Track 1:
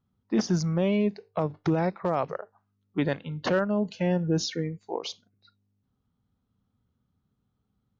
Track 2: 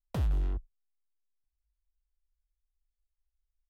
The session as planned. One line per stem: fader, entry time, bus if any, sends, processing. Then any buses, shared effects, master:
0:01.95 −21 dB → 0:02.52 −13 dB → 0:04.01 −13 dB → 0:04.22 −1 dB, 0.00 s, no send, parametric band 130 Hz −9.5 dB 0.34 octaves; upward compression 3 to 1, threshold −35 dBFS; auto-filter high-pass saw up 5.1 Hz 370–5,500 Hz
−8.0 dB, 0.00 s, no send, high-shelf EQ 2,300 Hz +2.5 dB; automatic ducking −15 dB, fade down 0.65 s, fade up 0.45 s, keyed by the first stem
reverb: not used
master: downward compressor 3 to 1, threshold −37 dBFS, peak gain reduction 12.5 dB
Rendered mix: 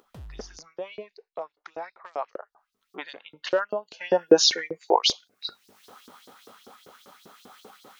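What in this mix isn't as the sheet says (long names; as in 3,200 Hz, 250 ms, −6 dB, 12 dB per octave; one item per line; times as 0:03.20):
stem 1 −21.0 dB → −10.0 dB
master: missing downward compressor 3 to 1, threshold −37 dBFS, peak gain reduction 12.5 dB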